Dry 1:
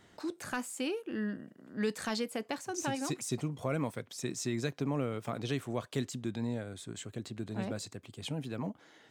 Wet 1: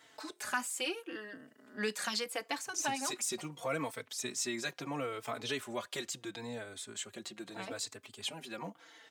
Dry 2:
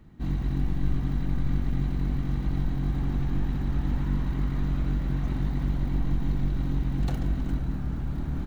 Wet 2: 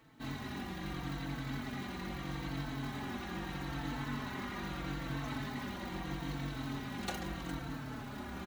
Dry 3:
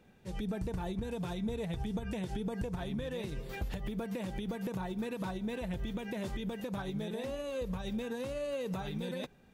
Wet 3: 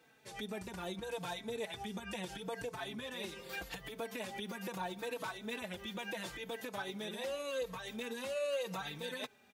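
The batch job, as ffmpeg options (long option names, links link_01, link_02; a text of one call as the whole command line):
ffmpeg -i in.wav -filter_complex "[0:a]highpass=frequency=1000:poles=1,asplit=2[link_01][link_02];[link_02]adelay=4,afreqshift=-0.78[link_03];[link_01][link_03]amix=inputs=2:normalize=1,volume=7.5dB" out.wav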